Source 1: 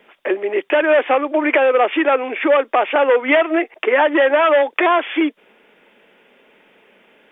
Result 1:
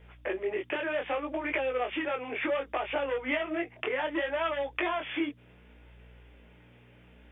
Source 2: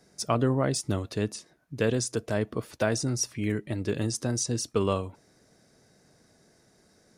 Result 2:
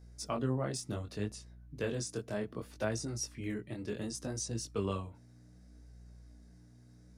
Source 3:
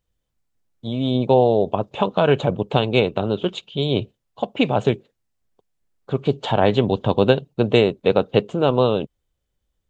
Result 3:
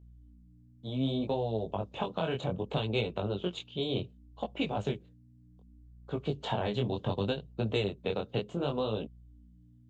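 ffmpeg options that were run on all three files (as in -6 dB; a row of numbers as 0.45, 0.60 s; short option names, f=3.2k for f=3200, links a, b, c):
-filter_complex "[0:a]acrossover=split=140|3000[a][b][c];[b]acompressor=threshold=-20dB:ratio=6[d];[a][d][c]amix=inputs=3:normalize=0,aeval=exprs='val(0)+0.00562*(sin(2*PI*60*n/s)+sin(2*PI*2*60*n/s)/2+sin(2*PI*3*60*n/s)/3+sin(2*PI*4*60*n/s)/4+sin(2*PI*5*60*n/s)/5)':c=same,flanger=delay=18:depth=6.3:speed=0.66,volume=-6dB"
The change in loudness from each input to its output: -15.5, -9.0, -13.5 LU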